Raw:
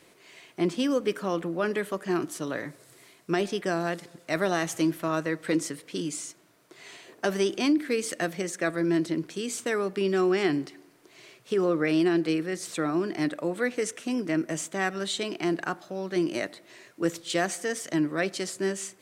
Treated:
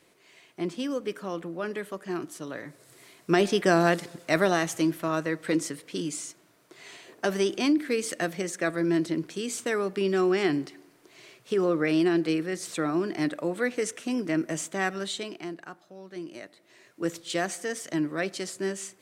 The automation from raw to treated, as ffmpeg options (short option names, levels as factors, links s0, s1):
-af "volume=7.5,afade=t=in:st=2.64:d=1.21:silence=0.237137,afade=t=out:st=3.85:d=0.88:silence=0.421697,afade=t=out:st=14.89:d=0.66:silence=0.251189,afade=t=in:st=16.51:d=0.61:silence=0.316228"